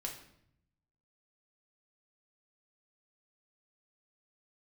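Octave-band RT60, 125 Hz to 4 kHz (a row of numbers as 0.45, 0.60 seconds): 1.3, 1.0, 0.75, 0.65, 0.65, 0.60 seconds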